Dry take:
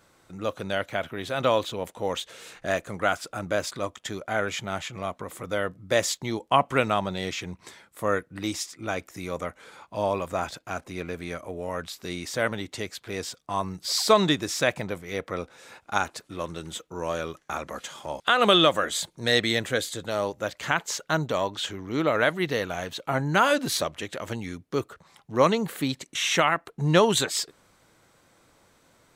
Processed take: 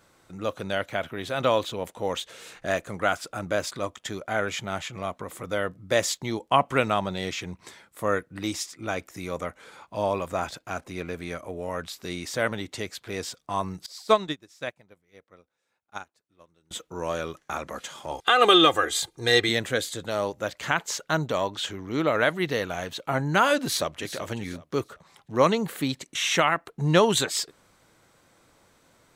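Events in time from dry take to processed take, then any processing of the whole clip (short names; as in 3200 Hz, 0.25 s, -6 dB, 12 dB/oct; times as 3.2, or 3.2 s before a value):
13.86–16.71 upward expander 2.5:1, over -34 dBFS
18.11–19.49 comb 2.5 ms, depth 73%
23.64–24.19 echo throw 0.38 s, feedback 25%, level -12 dB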